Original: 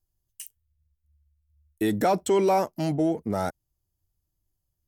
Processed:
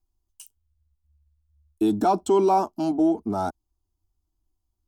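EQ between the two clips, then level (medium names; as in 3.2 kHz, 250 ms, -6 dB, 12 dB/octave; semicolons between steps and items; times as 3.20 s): treble shelf 4.4 kHz -10 dB; peaking EQ 13 kHz -8 dB 0.3 oct; static phaser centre 520 Hz, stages 6; +5.0 dB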